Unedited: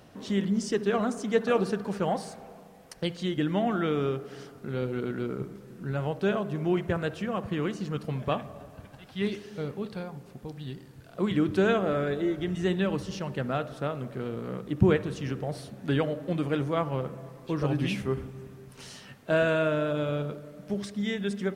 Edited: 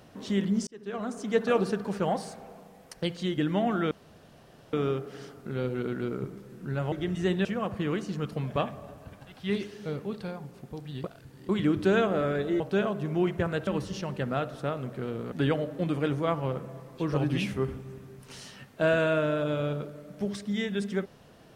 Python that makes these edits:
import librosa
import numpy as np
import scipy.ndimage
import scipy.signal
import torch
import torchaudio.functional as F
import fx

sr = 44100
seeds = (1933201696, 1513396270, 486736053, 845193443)

y = fx.edit(x, sr, fx.fade_in_span(start_s=0.67, length_s=0.74),
    fx.insert_room_tone(at_s=3.91, length_s=0.82),
    fx.swap(start_s=6.1, length_s=1.07, other_s=12.32, other_length_s=0.53),
    fx.reverse_span(start_s=10.76, length_s=0.45),
    fx.cut(start_s=14.5, length_s=1.31), tone=tone)